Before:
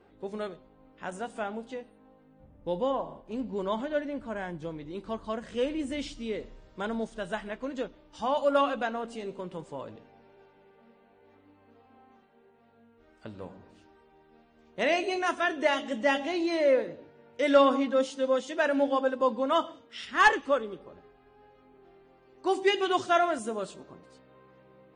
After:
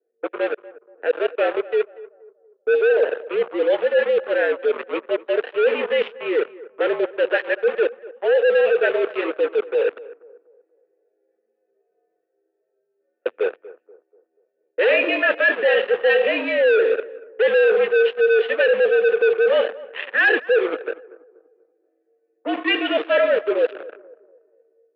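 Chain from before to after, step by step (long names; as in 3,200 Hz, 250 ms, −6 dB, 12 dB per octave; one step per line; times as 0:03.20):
formant filter e
automatic gain control gain up to 6 dB
leveller curve on the samples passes 5
reversed playback
downward compressor, threshold −22 dBFS, peak gain reduction 10 dB
reversed playback
single-sideband voice off tune −65 Hz 470–3,300 Hz
on a send: tape delay 240 ms, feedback 42%, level −17.5 dB, low-pass 1,600 Hz
on the sum: low-pass that shuts in the quiet parts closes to 900 Hz, open at −25.5 dBFS
level +7.5 dB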